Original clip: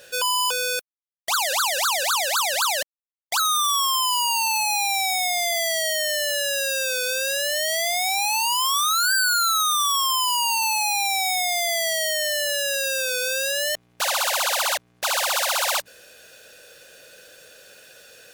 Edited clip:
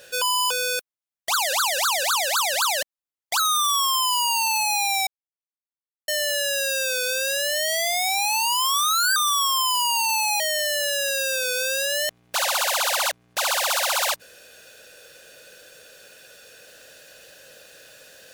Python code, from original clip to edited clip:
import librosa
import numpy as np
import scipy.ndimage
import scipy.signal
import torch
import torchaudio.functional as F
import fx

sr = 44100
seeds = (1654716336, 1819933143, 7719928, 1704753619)

y = fx.edit(x, sr, fx.silence(start_s=5.07, length_s=1.01),
    fx.cut(start_s=9.16, length_s=0.53),
    fx.cut(start_s=10.93, length_s=1.13), tone=tone)